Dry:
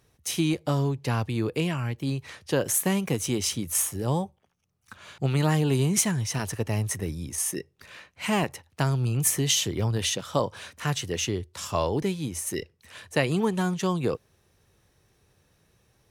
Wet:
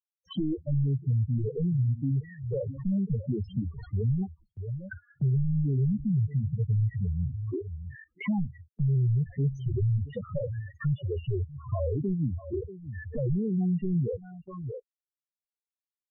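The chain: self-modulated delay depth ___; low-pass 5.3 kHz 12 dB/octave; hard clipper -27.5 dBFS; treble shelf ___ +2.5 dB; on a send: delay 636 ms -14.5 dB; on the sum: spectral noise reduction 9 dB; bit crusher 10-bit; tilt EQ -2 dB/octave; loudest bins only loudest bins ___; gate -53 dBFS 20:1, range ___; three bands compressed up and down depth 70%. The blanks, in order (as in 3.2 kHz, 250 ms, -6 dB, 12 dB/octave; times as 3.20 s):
0.26 ms, 3.5 kHz, 4, -18 dB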